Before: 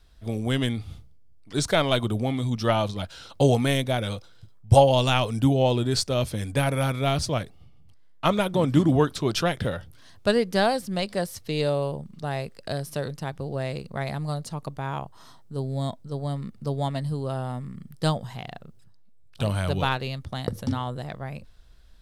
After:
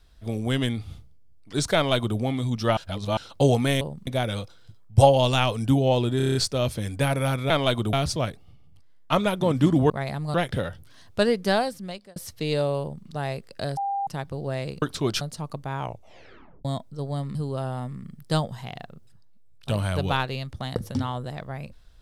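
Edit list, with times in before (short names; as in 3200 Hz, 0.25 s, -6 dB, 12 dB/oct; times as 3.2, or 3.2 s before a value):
1.75–2.18 copy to 7.06
2.77–3.17 reverse
5.91 stutter 0.03 s, 7 plays
9.03–9.42 swap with 13.9–14.34
10.58–11.24 fade out
11.89–12.15 copy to 3.81
12.85–13.15 bleep 796 Hz -24 dBFS
14.91 tape stop 0.87 s
16.48–17.07 cut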